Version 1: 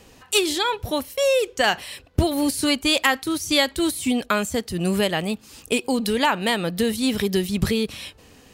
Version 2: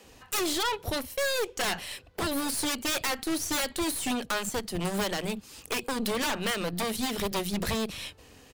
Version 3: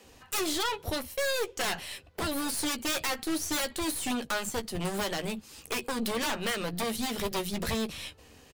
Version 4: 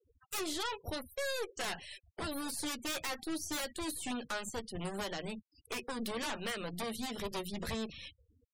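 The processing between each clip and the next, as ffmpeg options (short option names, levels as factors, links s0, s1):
-filter_complex "[0:a]aeval=exprs='0.1*(abs(mod(val(0)/0.1+3,4)-2)-1)':c=same,acrossover=split=200[s0][s1];[s0]adelay=40[s2];[s2][s1]amix=inputs=2:normalize=0,aeval=exprs='0.211*(cos(1*acos(clip(val(0)/0.211,-1,1)))-cos(1*PI/2))+0.015*(cos(8*acos(clip(val(0)/0.211,-1,1)))-cos(8*PI/2))':c=same,volume=0.708"
-filter_complex "[0:a]asplit=2[s0][s1];[s1]adelay=13,volume=0.335[s2];[s0][s2]amix=inputs=2:normalize=0,volume=0.794"
-af "afftfilt=real='re*gte(hypot(re,im),0.01)':imag='im*gte(hypot(re,im),0.01)':win_size=1024:overlap=0.75,volume=0.447"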